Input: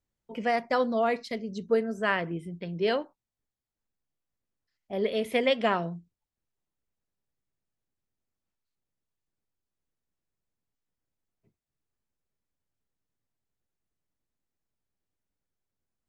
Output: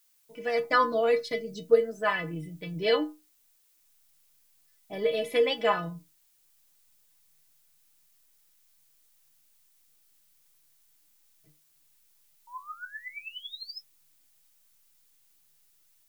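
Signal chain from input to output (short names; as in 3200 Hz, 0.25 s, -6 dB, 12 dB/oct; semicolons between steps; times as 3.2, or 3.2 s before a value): AGC gain up to 15 dB; painted sound rise, 12.47–13.81, 920–5400 Hz -33 dBFS; metallic resonator 150 Hz, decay 0.27 s, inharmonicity 0.008; added noise blue -68 dBFS; gain +1.5 dB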